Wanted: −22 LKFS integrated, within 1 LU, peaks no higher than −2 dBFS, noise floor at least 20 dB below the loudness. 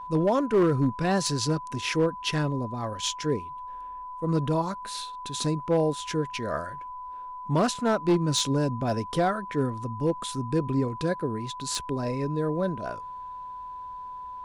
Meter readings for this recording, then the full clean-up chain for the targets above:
share of clipped samples 0.6%; peaks flattened at −16.5 dBFS; interfering tone 1,000 Hz; level of the tone −36 dBFS; integrated loudness −27.5 LKFS; sample peak −16.5 dBFS; target loudness −22.0 LKFS
→ clipped peaks rebuilt −16.5 dBFS
notch filter 1,000 Hz, Q 30
level +5.5 dB

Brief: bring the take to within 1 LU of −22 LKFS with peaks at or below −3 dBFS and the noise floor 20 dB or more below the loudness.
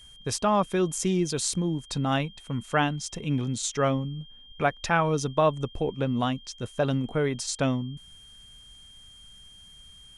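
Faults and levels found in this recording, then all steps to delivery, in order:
interfering tone 3,200 Hz; level of the tone −49 dBFS; integrated loudness −27.5 LKFS; sample peak −9.0 dBFS; target loudness −22.0 LKFS
→ notch filter 3,200 Hz, Q 30
level +5.5 dB

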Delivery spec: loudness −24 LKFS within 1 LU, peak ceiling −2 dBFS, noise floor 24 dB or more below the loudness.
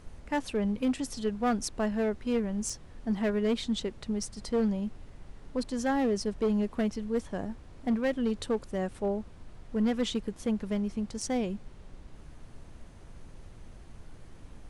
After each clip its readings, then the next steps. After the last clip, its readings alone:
share of clipped samples 1.4%; peaks flattened at −22.0 dBFS; background noise floor −50 dBFS; target noise floor −56 dBFS; integrated loudness −31.5 LKFS; sample peak −22.0 dBFS; target loudness −24.0 LKFS
→ clipped peaks rebuilt −22 dBFS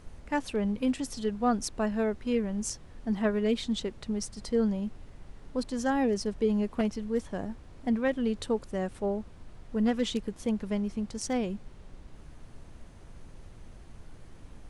share of clipped samples 0.0%; background noise floor −50 dBFS; target noise floor −55 dBFS
→ noise reduction from a noise print 6 dB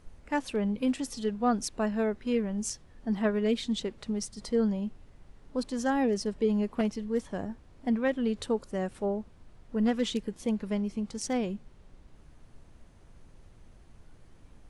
background noise floor −56 dBFS; integrated loudness −31.0 LKFS; sample peak −13.5 dBFS; target loudness −24.0 LKFS
→ level +7 dB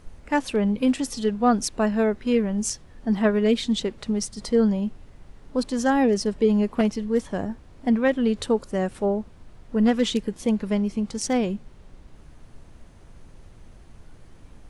integrated loudness −24.0 LKFS; sample peak −6.5 dBFS; background noise floor −49 dBFS

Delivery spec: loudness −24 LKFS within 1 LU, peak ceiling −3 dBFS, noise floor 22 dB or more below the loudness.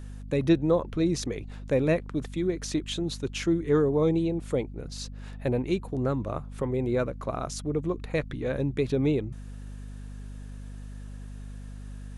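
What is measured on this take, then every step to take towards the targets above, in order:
mains hum 50 Hz; hum harmonics up to 250 Hz; level of the hum −37 dBFS; integrated loudness −28.5 LKFS; sample peak −11.5 dBFS; target loudness −24.0 LKFS
→ mains-hum notches 50/100/150/200/250 Hz
level +4.5 dB

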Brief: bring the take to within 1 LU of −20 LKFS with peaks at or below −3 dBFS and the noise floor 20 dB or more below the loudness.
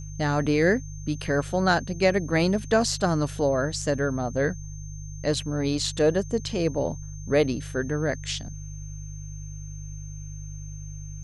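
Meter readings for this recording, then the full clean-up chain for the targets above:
mains hum 50 Hz; hum harmonics up to 150 Hz; level of the hum −35 dBFS; interfering tone 6,300 Hz; level of the tone −46 dBFS; integrated loudness −25.5 LKFS; sample peak −7.0 dBFS; target loudness −20.0 LKFS
→ hum removal 50 Hz, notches 3
notch filter 6,300 Hz, Q 30
level +5.5 dB
brickwall limiter −3 dBFS

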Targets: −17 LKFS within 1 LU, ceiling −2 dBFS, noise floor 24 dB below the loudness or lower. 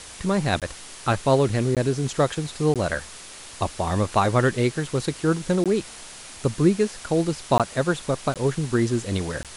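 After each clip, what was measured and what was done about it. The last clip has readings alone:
number of dropouts 7; longest dropout 17 ms; background noise floor −41 dBFS; target noise floor −48 dBFS; integrated loudness −23.5 LKFS; sample peak −6.5 dBFS; target loudness −17.0 LKFS
→ repair the gap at 0:00.60/0:01.75/0:02.74/0:05.64/0:07.58/0:08.34/0:09.43, 17 ms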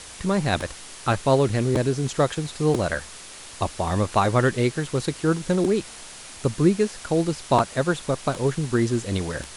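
number of dropouts 0; background noise floor −41 dBFS; target noise floor −48 dBFS
→ broadband denoise 7 dB, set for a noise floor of −41 dBFS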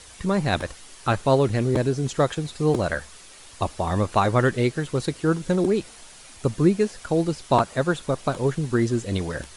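background noise floor −46 dBFS; target noise floor −48 dBFS
→ broadband denoise 6 dB, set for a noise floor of −46 dBFS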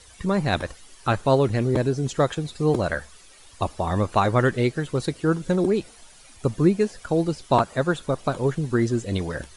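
background noise floor −49 dBFS; integrated loudness −24.0 LKFS; sample peak −6.5 dBFS; target loudness −17.0 LKFS
→ level +7 dB
brickwall limiter −2 dBFS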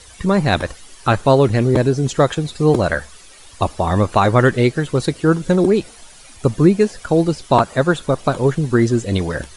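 integrated loudness −17.0 LKFS; sample peak −2.0 dBFS; background noise floor −42 dBFS

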